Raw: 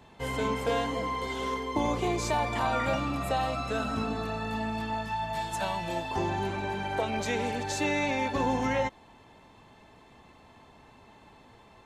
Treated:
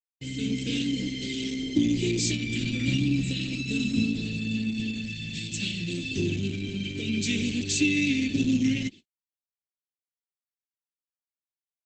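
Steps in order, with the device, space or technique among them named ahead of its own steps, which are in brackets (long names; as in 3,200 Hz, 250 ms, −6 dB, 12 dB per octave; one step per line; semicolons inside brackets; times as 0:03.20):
elliptic band-stop filter 310–2,600 Hz, stop band 70 dB
0:02.64–0:03.33: dynamic equaliser 130 Hz, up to +4 dB, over −50 dBFS, Q 4.9
video call (high-pass filter 100 Hz 24 dB per octave; automatic gain control gain up to 6 dB; noise gate −44 dBFS, range −60 dB; level +3 dB; Opus 12 kbit/s 48,000 Hz)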